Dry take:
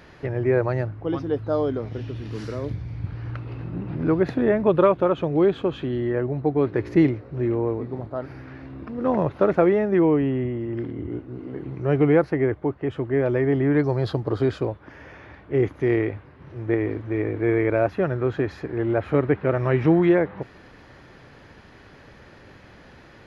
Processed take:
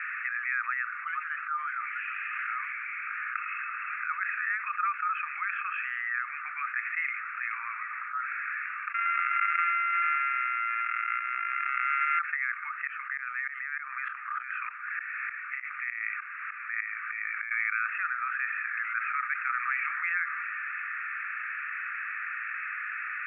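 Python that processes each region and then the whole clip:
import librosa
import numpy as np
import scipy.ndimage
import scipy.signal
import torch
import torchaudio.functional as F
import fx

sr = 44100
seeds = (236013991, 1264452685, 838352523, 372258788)

y = fx.chain(x, sr, fx.sample_sort(block=64),
    fx.pre_swell(db_per_s=38.0), at=(8.94, 12.19))
y = fx.chain(y, sr, fx.notch(hz=910.0, q=18.0),
    fx.over_compress(threshold_db=-23.0, ratio=-0.5),
    fx.tremolo_decay(direction='swelling', hz=3.3, depth_db=21), at=(12.87, 17.51))
y = scipy.signal.sosfilt(scipy.signal.cheby1(5, 1.0, [1200.0, 2600.0], 'bandpass', fs=sr, output='sos'), y)
y = fx.env_flatten(y, sr, amount_pct=70)
y = y * librosa.db_to_amplitude(-4.0)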